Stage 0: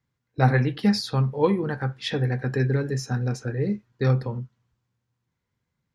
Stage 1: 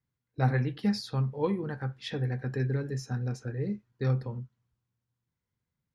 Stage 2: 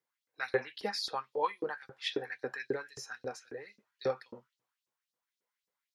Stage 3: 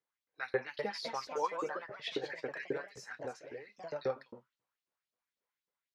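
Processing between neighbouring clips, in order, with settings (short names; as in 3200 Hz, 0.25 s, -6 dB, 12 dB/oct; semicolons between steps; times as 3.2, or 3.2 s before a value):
low shelf 220 Hz +4 dB; gain -9 dB
LFO high-pass saw up 3.7 Hz 350–5500 Hz
high shelf 5800 Hz -11.5 dB; echoes that change speed 0.309 s, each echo +2 st, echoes 3, each echo -6 dB; gain -2.5 dB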